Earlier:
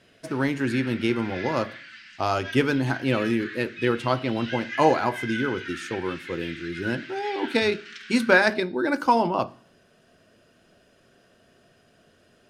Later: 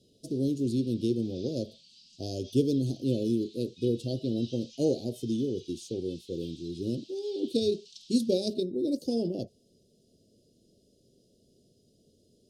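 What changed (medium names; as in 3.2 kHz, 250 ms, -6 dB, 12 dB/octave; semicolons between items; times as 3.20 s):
speech: send off; master: add inverse Chebyshev band-stop 990–2000 Hz, stop band 60 dB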